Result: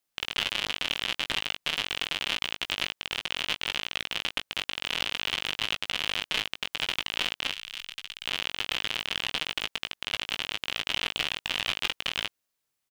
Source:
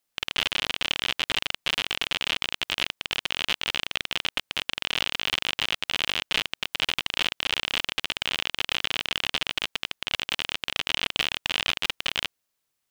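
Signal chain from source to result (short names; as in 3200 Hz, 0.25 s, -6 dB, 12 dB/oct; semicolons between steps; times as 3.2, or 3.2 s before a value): 7.51–8.26 passive tone stack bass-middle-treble 5-5-5; doubler 19 ms -9.5 dB; gain -3 dB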